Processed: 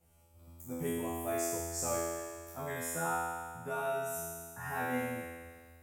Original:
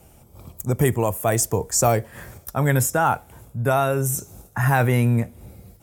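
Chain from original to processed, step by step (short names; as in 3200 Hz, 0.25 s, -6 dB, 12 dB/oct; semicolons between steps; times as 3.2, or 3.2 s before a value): resonator 84 Hz, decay 1.7 s, harmonics all, mix 100%; gain +3 dB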